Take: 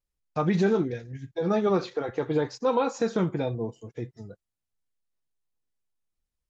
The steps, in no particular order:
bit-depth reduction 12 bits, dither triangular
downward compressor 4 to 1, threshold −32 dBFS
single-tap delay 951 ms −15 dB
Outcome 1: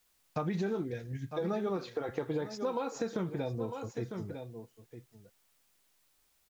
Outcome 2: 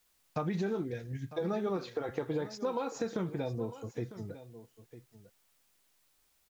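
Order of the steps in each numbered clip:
single-tap delay, then downward compressor, then bit-depth reduction
downward compressor, then single-tap delay, then bit-depth reduction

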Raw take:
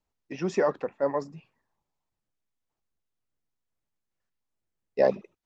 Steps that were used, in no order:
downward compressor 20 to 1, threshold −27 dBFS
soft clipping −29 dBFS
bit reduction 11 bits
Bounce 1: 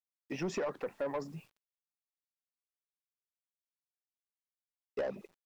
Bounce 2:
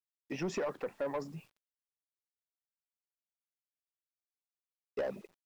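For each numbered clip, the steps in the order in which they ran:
bit reduction, then downward compressor, then soft clipping
downward compressor, then bit reduction, then soft clipping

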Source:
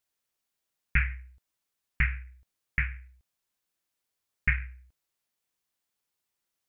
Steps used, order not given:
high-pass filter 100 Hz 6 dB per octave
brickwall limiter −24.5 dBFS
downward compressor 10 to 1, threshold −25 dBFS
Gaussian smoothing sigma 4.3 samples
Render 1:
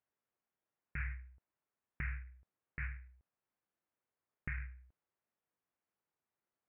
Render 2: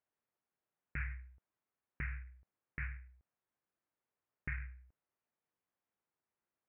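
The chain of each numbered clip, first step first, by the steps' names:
high-pass filter, then downward compressor, then brickwall limiter, then Gaussian smoothing
downward compressor, then Gaussian smoothing, then brickwall limiter, then high-pass filter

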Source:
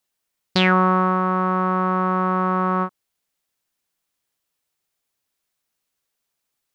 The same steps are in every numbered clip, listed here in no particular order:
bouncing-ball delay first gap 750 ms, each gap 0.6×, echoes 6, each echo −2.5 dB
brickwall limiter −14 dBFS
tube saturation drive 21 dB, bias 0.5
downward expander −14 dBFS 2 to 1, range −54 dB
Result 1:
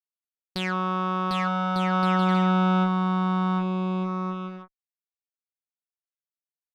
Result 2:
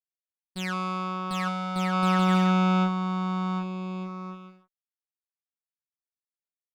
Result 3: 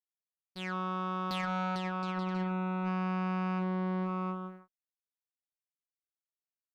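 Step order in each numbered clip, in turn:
downward expander, then brickwall limiter, then tube saturation, then bouncing-ball delay
tube saturation, then brickwall limiter, then bouncing-ball delay, then downward expander
bouncing-ball delay, then brickwall limiter, then tube saturation, then downward expander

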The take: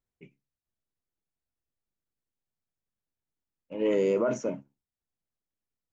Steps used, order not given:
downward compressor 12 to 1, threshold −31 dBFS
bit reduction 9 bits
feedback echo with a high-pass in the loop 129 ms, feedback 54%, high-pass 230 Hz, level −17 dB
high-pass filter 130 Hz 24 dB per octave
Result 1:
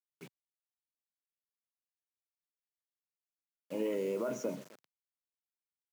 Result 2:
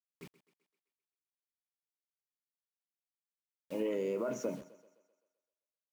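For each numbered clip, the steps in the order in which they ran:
downward compressor, then feedback echo with a high-pass in the loop, then bit reduction, then high-pass filter
high-pass filter, then bit reduction, then downward compressor, then feedback echo with a high-pass in the loop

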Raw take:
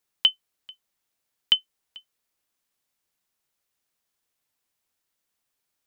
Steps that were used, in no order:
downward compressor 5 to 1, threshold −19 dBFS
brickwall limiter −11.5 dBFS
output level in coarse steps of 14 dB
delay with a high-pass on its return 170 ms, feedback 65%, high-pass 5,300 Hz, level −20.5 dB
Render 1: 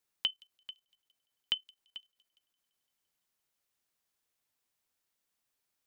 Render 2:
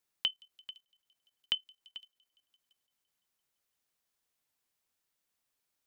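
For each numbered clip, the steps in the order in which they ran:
downward compressor, then brickwall limiter, then delay with a high-pass on its return, then output level in coarse steps
delay with a high-pass on its return, then downward compressor, then output level in coarse steps, then brickwall limiter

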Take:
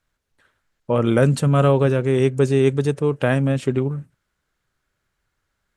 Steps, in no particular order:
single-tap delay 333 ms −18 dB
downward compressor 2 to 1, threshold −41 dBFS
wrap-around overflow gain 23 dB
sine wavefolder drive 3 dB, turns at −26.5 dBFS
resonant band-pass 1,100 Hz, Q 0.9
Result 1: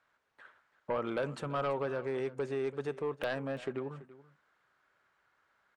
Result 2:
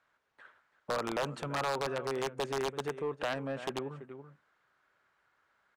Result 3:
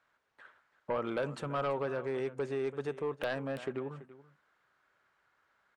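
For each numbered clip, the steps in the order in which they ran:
downward compressor, then resonant band-pass, then wrap-around overflow, then sine wavefolder, then single-tap delay
single-tap delay, then downward compressor, then wrap-around overflow, then resonant band-pass, then sine wavefolder
downward compressor, then resonant band-pass, then wrap-around overflow, then single-tap delay, then sine wavefolder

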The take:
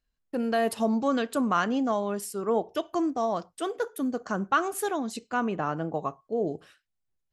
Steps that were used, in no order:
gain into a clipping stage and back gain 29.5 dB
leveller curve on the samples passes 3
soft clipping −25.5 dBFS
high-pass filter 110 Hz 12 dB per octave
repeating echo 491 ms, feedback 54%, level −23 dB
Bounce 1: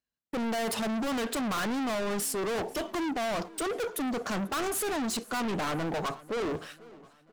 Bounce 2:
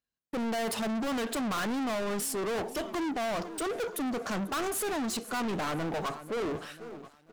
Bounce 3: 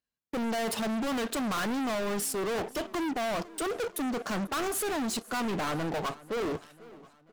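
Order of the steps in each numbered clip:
high-pass filter, then soft clipping, then leveller curve on the samples, then repeating echo, then gain into a clipping stage and back
high-pass filter, then gain into a clipping stage and back, then repeating echo, then leveller curve on the samples, then soft clipping
high-pass filter, then leveller curve on the samples, then soft clipping, then repeating echo, then gain into a clipping stage and back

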